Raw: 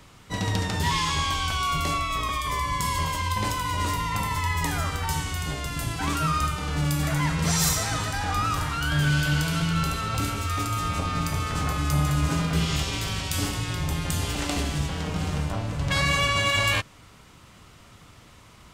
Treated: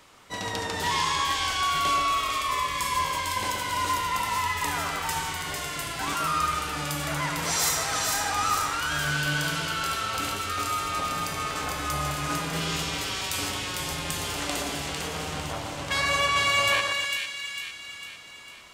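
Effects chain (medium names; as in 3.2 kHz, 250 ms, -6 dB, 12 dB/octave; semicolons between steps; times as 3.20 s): tone controls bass -14 dB, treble 0 dB; on a send: two-band feedback delay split 1.8 kHz, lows 123 ms, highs 451 ms, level -3.5 dB; on the sum: trim -1 dB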